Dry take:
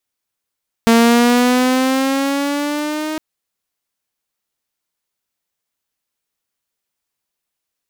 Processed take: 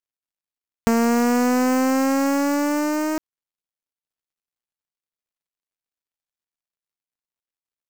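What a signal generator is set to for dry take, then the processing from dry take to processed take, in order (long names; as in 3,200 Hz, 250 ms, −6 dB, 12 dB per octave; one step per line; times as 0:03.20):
pitch glide with a swell saw, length 2.31 s, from 228 Hz, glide +5.5 semitones, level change −13 dB, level −5 dB
gap after every zero crossing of 0.13 ms
downward compressor, threshold −16 dBFS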